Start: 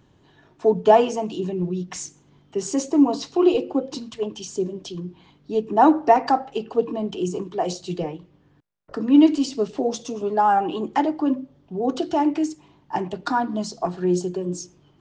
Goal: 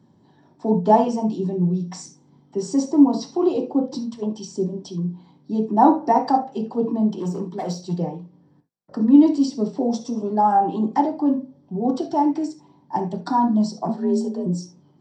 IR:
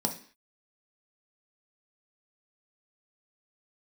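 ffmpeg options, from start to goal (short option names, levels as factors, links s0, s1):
-filter_complex "[0:a]asettb=1/sr,asplit=3[s0][s1][s2];[s0]atrim=end=7.104[s3];[s1]atrim=start=7.1:end=7.93,asetpts=PTS-STARTPTS,afade=t=in:d=0.004:c=qsin,afade=t=out:st=0.826:d=0.004:c=qsin,asoftclip=type=hard:threshold=0.0708[s4];[s2]atrim=start=7.926[s5];[s3][s4]acrossfade=d=0.004:c1=hsin:c2=qsin[s6];[s6][s5]acrossfade=d=0.004:c1=qsin:c2=hsin,asettb=1/sr,asplit=3[s7][s8][s9];[s7]atrim=end=13.884[s10];[s8]atrim=start=13.88:end=14.46,asetpts=PTS-STARTPTS,afade=t=in:d=0.004:c=qsin,afade=t=out:st=0.576:d=0.004:c=qsin,afreqshift=48[s11];[s9]atrim=start=14.456[s12];[s10][s11]acrossfade=d=0.004:c1=hsin:c2=qsin[s13];[s13][s12]acrossfade=d=0.004:c1=qsin:c2=hsin[s14];[1:a]atrim=start_sample=2205,atrim=end_sample=3969[s15];[s14][s15]afir=irnorm=-1:irlink=0,volume=0.316"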